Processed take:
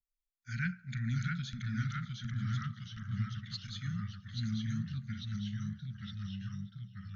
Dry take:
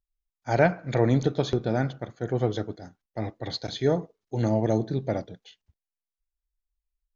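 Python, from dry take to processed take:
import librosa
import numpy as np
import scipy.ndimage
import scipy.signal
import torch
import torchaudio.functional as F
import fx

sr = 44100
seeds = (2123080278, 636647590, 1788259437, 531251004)

y = scipy.signal.sosfilt(scipy.signal.cheby1(5, 1.0, [230.0, 1400.0], 'bandstop', fs=sr, output='sos'), x)
y = fx.echo_pitch(y, sr, ms=623, semitones=-1, count=3, db_per_echo=-3.0)
y = y + 10.0 ** (-20.0 / 20.0) * np.pad(y, (int(585 * sr / 1000.0), 0))[:len(y)]
y = y * librosa.db_to_amplitude(-8.5)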